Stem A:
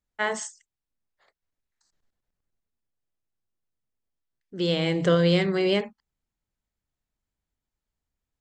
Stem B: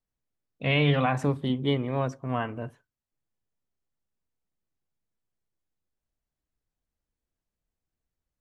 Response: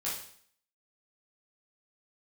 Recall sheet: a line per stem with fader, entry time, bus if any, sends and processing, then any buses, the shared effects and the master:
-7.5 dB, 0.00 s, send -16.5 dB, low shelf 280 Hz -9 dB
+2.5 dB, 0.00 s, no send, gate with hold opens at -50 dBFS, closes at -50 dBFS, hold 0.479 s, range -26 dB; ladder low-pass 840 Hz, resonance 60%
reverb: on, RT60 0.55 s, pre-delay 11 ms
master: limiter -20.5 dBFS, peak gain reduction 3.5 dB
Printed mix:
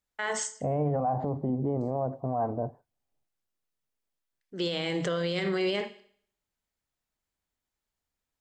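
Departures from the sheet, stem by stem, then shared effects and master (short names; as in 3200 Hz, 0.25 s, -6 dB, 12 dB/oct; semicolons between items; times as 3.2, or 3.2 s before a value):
stem A -7.5 dB -> +1.5 dB; stem B +2.5 dB -> +13.0 dB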